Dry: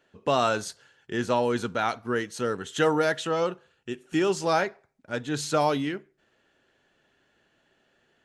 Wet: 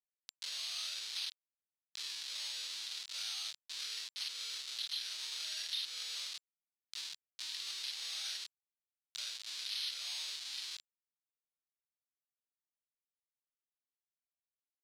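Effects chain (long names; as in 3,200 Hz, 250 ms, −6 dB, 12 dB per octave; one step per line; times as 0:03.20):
every overlapping window played backwards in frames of 57 ms
in parallel at +1.5 dB: downward compressor 6 to 1, threshold −38 dBFS, peak gain reduction 15 dB
on the sum: time stretch by overlap-add 1.8×, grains 117 ms
comparator with hysteresis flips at −37.5 dBFS
decimation without filtering 6×
gain into a clipping stage and back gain 31 dB
four-pole ladder band-pass 4,700 Hz, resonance 50%
multiband upward and downward compressor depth 70%
level +9 dB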